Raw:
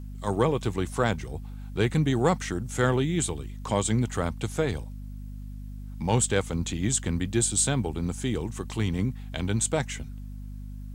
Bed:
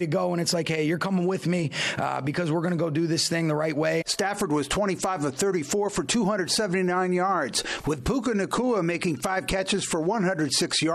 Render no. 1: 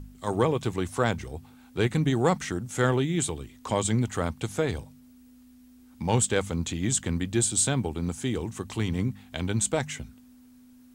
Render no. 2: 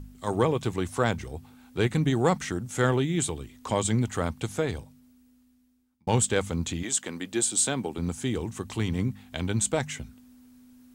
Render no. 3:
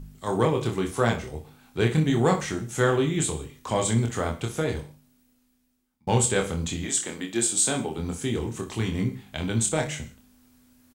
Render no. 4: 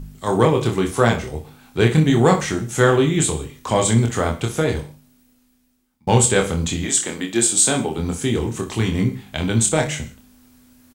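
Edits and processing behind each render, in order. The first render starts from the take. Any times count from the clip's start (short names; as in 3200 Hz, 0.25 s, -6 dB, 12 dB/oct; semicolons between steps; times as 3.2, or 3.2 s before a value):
de-hum 50 Hz, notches 4
4.44–6.07 fade out; 6.82–7.97 HPF 420 Hz -> 180 Hz
early reflections 26 ms -4 dB, 61 ms -12 dB; non-linear reverb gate 0.19 s falling, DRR 11 dB
gain +7 dB; limiter -1 dBFS, peak gain reduction 1 dB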